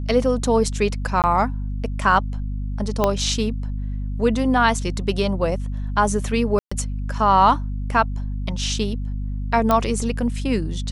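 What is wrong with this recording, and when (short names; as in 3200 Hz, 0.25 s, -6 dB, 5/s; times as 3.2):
hum 50 Hz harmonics 5 -26 dBFS
1.22–1.24 gap 18 ms
3.04 pop -5 dBFS
6.59–6.71 gap 0.125 s
9.71 pop -6 dBFS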